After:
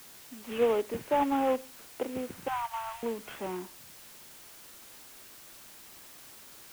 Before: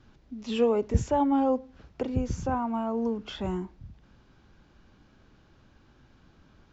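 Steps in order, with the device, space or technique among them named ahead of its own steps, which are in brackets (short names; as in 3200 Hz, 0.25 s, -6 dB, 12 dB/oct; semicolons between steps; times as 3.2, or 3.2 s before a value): army field radio (BPF 350–2900 Hz; CVSD 16 kbps; white noise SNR 17 dB); 2.48–3.03 elliptic band-stop 130–820 Hz, stop band 40 dB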